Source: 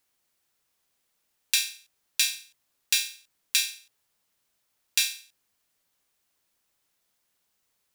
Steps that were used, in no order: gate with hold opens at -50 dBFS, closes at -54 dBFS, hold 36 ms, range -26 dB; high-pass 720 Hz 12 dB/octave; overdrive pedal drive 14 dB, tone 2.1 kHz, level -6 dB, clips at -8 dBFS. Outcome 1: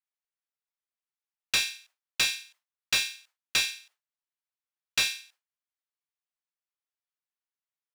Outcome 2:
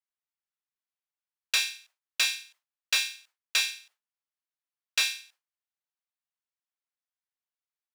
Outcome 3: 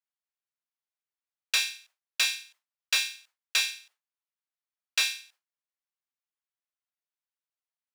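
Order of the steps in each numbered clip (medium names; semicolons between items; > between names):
high-pass > overdrive pedal > gate with hold; overdrive pedal > high-pass > gate with hold; overdrive pedal > gate with hold > high-pass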